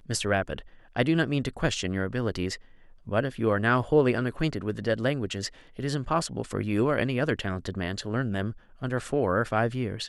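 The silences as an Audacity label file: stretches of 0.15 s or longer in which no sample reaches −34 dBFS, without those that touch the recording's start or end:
0.600000	0.960000	silence
2.550000	3.070000	silence
5.480000	5.790000	silence
8.510000	8.820000	silence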